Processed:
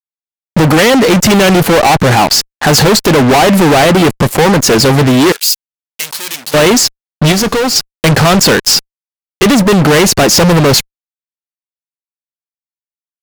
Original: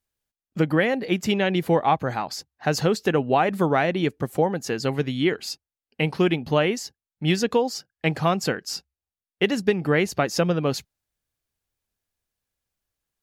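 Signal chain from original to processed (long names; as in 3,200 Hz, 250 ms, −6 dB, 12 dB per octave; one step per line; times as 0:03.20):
fuzz pedal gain 39 dB, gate −43 dBFS
0:05.32–0:06.54: first difference
0:07.32–0:07.76: tuned comb filter 90 Hz, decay 1.2 s, harmonics all, mix 40%
level +7.5 dB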